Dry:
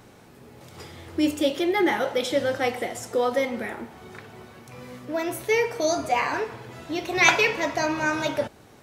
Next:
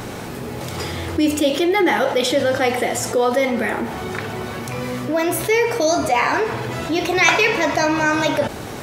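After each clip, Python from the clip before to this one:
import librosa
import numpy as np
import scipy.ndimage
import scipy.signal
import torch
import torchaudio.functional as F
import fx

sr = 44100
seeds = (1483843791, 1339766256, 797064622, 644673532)

y = fx.env_flatten(x, sr, amount_pct=50)
y = y * 10.0 ** (2.0 / 20.0)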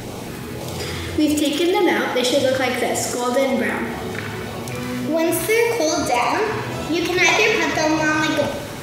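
y = fx.filter_lfo_notch(x, sr, shape='sine', hz=1.8, low_hz=550.0, high_hz=1800.0, q=1.4)
y = fx.echo_thinned(y, sr, ms=77, feedback_pct=63, hz=200.0, wet_db=-6.5)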